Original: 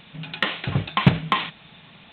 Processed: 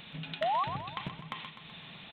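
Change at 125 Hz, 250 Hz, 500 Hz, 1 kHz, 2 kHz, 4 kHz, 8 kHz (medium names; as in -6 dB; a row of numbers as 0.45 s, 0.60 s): -20.0 dB, -19.5 dB, -5.0 dB, -5.5 dB, -15.5 dB, -13.5 dB, no reading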